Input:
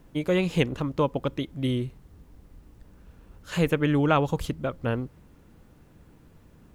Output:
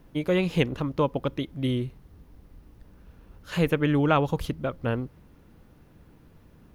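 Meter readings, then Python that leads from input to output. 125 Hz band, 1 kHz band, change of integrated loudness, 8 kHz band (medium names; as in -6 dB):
0.0 dB, 0.0 dB, 0.0 dB, -4.0 dB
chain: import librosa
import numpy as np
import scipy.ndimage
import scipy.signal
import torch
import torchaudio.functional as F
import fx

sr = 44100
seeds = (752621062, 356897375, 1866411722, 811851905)

y = fx.peak_eq(x, sr, hz=7600.0, db=-7.5, octaves=0.42)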